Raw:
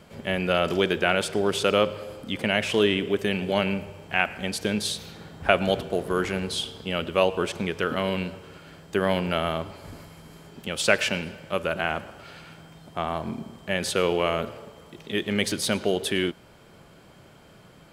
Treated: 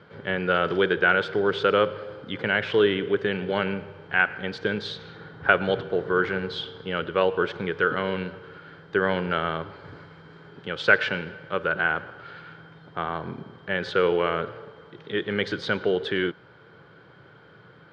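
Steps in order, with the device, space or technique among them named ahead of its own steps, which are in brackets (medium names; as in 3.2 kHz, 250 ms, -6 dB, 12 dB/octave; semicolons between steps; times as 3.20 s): guitar cabinet (cabinet simulation 110–3800 Hz, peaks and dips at 120 Hz +5 dB, 230 Hz -8 dB, 460 Hz +5 dB, 650 Hz -7 dB, 1.5 kHz +9 dB, 2.6 kHz -8 dB)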